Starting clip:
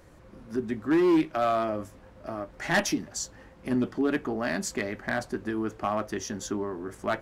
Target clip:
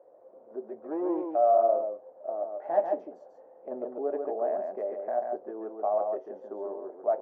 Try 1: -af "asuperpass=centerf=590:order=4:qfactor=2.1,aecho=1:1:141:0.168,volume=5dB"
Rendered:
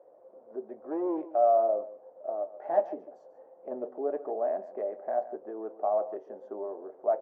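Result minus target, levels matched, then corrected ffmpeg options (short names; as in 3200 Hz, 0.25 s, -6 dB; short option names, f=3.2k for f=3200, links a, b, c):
echo-to-direct -11 dB
-af "asuperpass=centerf=590:order=4:qfactor=2.1,aecho=1:1:141:0.596,volume=5dB"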